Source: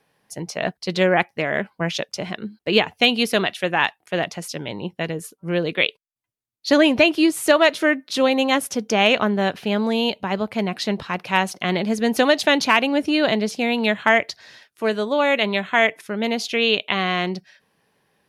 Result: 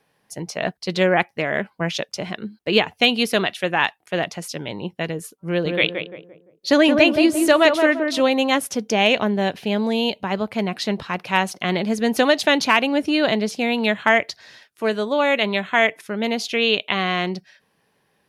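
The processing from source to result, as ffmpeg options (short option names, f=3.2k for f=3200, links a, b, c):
-filter_complex "[0:a]asettb=1/sr,asplit=3[a][b][c];[a]atrim=end=5.484[d];[b]atrim=start=5.48:end=8.2,asetpts=PTS-STARTPTS,afade=t=in:d=0.004:c=qsin,afade=t=out:st=2.716:d=0.004:c=qsin,asplit=2[e][f];[f]adelay=172,lowpass=f=1.1k:p=1,volume=-3.5dB,asplit=2[g][h];[h]adelay=172,lowpass=f=1.1k:p=1,volume=0.41,asplit=2[i][j];[j]adelay=172,lowpass=f=1.1k:p=1,volume=0.41,asplit=2[k][l];[l]adelay=172,lowpass=f=1.1k:p=1,volume=0.41,asplit=2[m][n];[n]adelay=172,lowpass=f=1.1k:p=1,volume=0.41[o];[e][g][i][k][m][o]amix=inputs=6:normalize=0,atrim=end_sample=119952[p];[c]atrim=start=8.196[q];[d][p]acrossfade=d=0.004:c1=hsin:c2=qsin[r];[r][q]acrossfade=d=0.004:c1=qsin:c2=hsin,asettb=1/sr,asplit=3[s][t][u];[s]atrim=end=8.884[v];[t]atrim=start=8.88:end=10.22,asetpts=PTS-STARTPTS,afade=t=in:d=0.004:c=qsin,afade=t=out:st=1.336:d=0.004:c=qsin,equalizer=f=1.3k:t=o:w=0.5:g=-7[w];[u]atrim=start=10.216[x];[v][w]acrossfade=d=0.004:c1=hsin:c2=qsin[y];[y][x]acrossfade=d=0.004:c1=qsin:c2=hsin"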